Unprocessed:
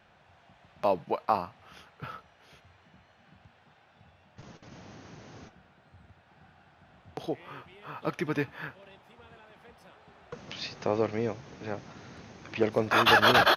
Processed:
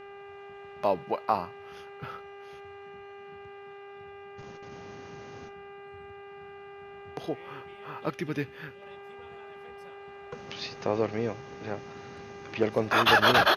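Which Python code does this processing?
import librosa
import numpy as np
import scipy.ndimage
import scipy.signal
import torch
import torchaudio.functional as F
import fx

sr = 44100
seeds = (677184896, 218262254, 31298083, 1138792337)

y = fx.dmg_buzz(x, sr, base_hz=400.0, harmonics=7, level_db=-46.0, tilt_db=-6, odd_only=False)
y = fx.peak_eq(y, sr, hz=920.0, db=-9.0, octaves=1.5, at=(8.1, 8.82))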